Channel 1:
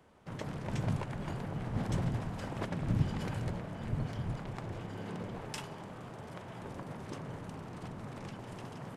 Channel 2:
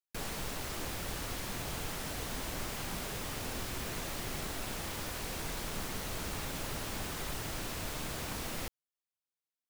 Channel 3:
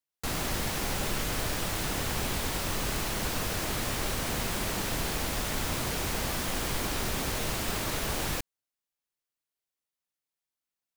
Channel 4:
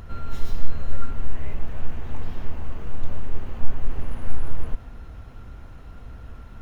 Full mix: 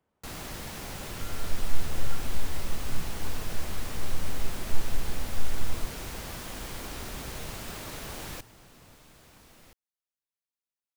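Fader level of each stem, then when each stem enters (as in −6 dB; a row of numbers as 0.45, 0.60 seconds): −15.5, −16.5, −8.0, −6.0 decibels; 0.00, 1.05, 0.00, 1.10 seconds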